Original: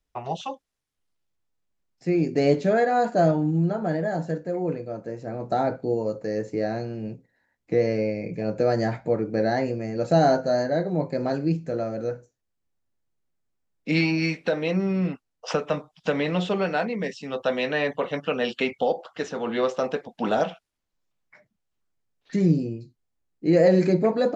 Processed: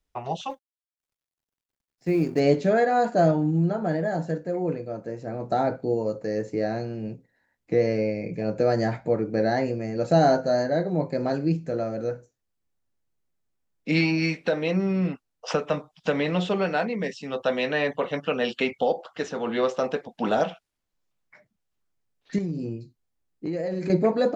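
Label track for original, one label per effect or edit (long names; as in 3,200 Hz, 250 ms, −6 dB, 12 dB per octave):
0.500000	2.400000	mu-law and A-law mismatch coded by A
22.380000	23.900000	downward compressor, threshold −26 dBFS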